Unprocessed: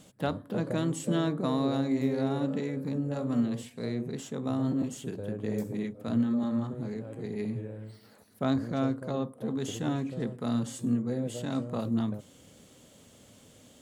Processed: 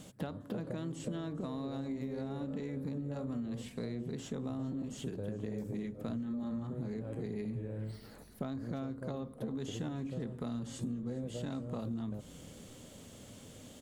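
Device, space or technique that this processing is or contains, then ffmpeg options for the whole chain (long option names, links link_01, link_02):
serial compression, leveller first: -filter_complex "[0:a]acrossover=split=6600[link_01][link_02];[link_02]acompressor=threshold=-56dB:ratio=4:attack=1:release=60[link_03];[link_01][link_03]amix=inputs=2:normalize=0,acompressor=threshold=-30dB:ratio=2.5,acompressor=threshold=-40dB:ratio=6,lowshelf=frequency=320:gain=3.5,asplit=5[link_04][link_05][link_06][link_07][link_08];[link_05]adelay=406,afreqshift=-60,volume=-21.5dB[link_09];[link_06]adelay=812,afreqshift=-120,volume=-26.2dB[link_10];[link_07]adelay=1218,afreqshift=-180,volume=-31dB[link_11];[link_08]adelay=1624,afreqshift=-240,volume=-35.7dB[link_12];[link_04][link_09][link_10][link_11][link_12]amix=inputs=5:normalize=0,volume=2dB"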